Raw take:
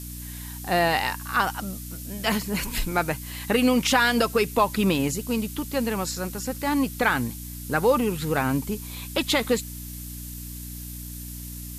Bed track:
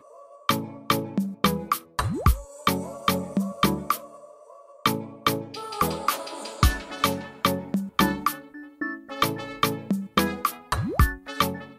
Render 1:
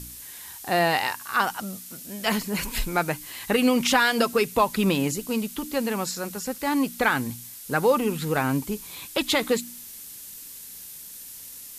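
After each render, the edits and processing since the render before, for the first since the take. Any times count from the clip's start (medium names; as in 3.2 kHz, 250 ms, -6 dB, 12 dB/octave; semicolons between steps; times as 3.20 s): de-hum 60 Hz, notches 5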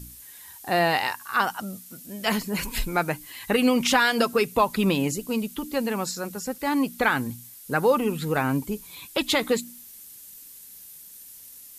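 noise reduction 7 dB, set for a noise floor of -42 dBFS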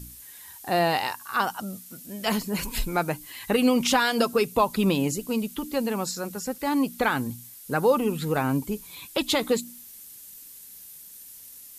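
dynamic bell 1.9 kHz, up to -5 dB, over -40 dBFS, Q 1.4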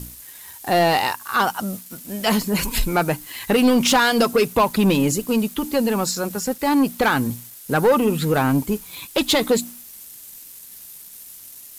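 waveshaping leveller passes 2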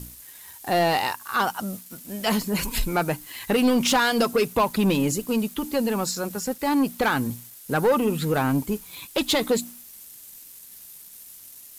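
trim -4 dB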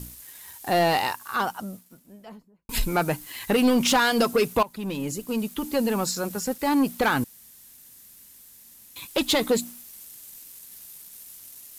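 0.91–2.69 s: studio fade out; 4.63–5.79 s: fade in, from -17.5 dB; 7.24–8.96 s: room tone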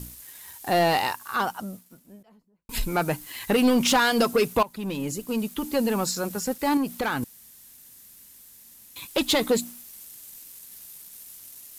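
2.23–3.38 s: fade in equal-power, from -18.5 dB; 6.77–7.23 s: compression 1.5:1, threshold -31 dBFS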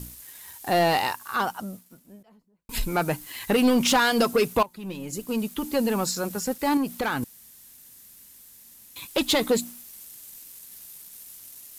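4.66–5.13 s: feedback comb 180 Hz, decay 0.15 s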